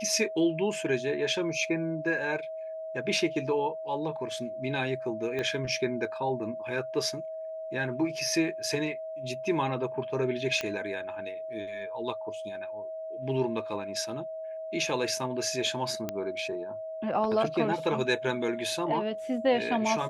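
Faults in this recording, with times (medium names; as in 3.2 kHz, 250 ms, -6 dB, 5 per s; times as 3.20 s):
whine 640 Hz -35 dBFS
5.39 s: pop -20 dBFS
10.61 s: pop -16 dBFS
16.09 s: pop -17 dBFS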